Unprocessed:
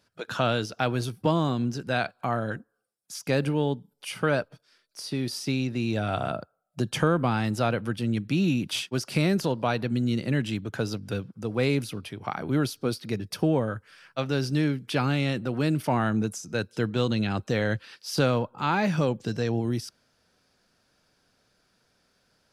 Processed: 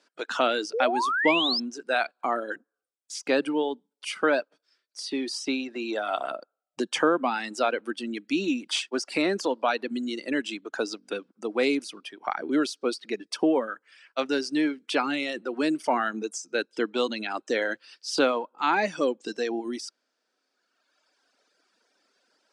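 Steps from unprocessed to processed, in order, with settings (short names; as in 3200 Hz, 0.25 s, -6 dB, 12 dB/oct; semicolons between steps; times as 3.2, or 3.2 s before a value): painted sound rise, 0.73–1.6, 420–5400 Hz -29 dBFS; elliptic band-pass 280–8500 Hz, stop band 40 dB; reverb removal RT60 1.9 s; gain +3.5 dB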